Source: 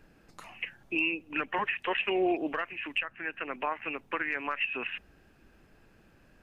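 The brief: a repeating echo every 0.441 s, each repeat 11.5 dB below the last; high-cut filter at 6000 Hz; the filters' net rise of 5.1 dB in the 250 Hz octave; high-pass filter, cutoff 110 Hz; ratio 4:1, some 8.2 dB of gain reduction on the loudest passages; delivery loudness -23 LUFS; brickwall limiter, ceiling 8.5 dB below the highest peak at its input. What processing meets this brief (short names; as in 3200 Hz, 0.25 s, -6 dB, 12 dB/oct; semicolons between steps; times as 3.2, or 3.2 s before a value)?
HPF 110 Hz; LPF 6000 Hz; bell 250 Hz +8.5 dB; compressor 4:1, threshold -30 dBFS; limiter -28 dBFS; feedback echo 0.441 s, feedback 27%, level -11.5 dB; gain +14.5 dB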